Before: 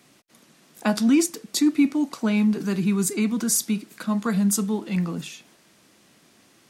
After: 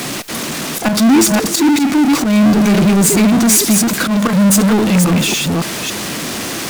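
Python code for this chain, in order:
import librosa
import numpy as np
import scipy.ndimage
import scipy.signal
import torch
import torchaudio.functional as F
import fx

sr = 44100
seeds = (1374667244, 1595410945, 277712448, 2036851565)

y = fx.reverse_delay(x, sr, ms=281, wet_db=-7.0)
y = fx.auto_swell(y, sr, attack_ms=148.0)
y = fx.power_curve(y, sr, exponent=0.35)
y = F.gain(torch.from_numpy(y), 4.0).numpy()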